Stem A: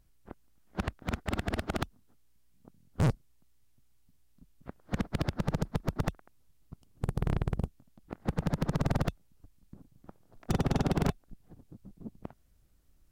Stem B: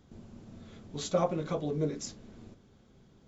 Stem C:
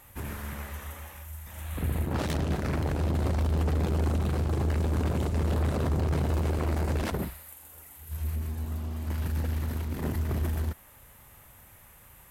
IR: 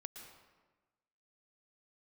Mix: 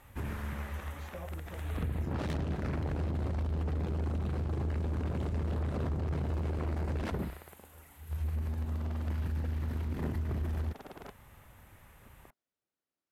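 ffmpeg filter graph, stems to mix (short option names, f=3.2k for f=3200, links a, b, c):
-filter_complex "[0:a]highpass=420,volume=-11dB[a];[1:a]volume=-16dB[b];[2:a]volume=0.5dB[c];[a][b][c]amix=inputs=3:normalize=0,lowpass=f=2.5k:p=1,equalizer=f=690:w=0.57:g=-2,acompressor=threshold=-30dB:ratio=6"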